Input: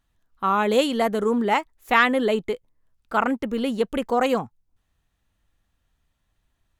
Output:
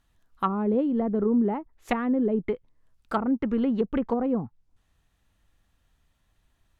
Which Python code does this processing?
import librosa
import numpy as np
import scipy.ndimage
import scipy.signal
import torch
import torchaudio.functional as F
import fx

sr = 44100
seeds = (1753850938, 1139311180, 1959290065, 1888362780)

y = fx.env_lowpass_down(x, sr, base_hz=450.0, full_db=-18.5)
y = fx.dynamic_eq(y, sr, hz=580.0, q=1.1, threshold_db=-38.0, ratio=4.0, max_db=-7)
y = F.gain(torch.from_numpy(y), 3.0).numpy()